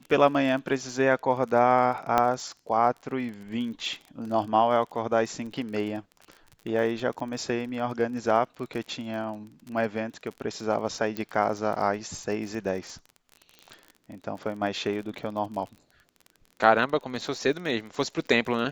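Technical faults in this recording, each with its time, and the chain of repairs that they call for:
surface crackle 32 per second −35 dBFS
0:02.18: click −9 dBFS
0:11.17: click −18 dBFS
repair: click removal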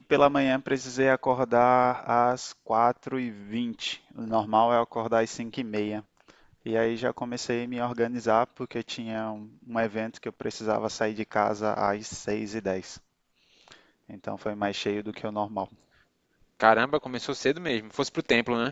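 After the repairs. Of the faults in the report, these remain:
none of them is left

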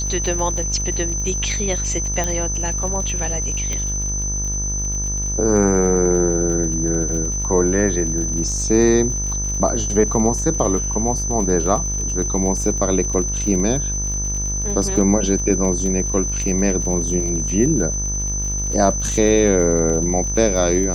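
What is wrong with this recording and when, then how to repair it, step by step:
mains buzz 50 Hz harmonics 38 −25 dBFS
surface crackle 48 per second −27 dBFS
whistle 6,100 Hz −23 dBFS
0:02.24: click −9 dBFS
0:03.73: click −12 dBFS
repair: click removal
hum removal 50 Hz, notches 38
notch filter 6,100 Hz, Q 30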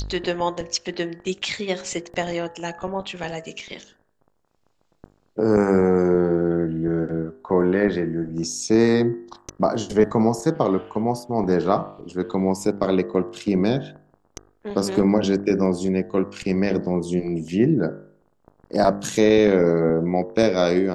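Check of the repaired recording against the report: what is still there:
0:02.24: click

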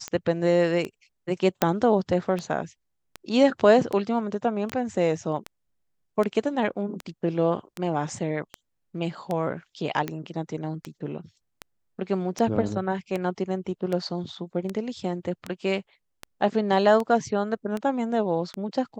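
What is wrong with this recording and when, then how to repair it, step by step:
scratch tick 78 rpm −16 dBFS
0:01.62: click −5 dBFS
0:04.72: click −17 dBFS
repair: click removal

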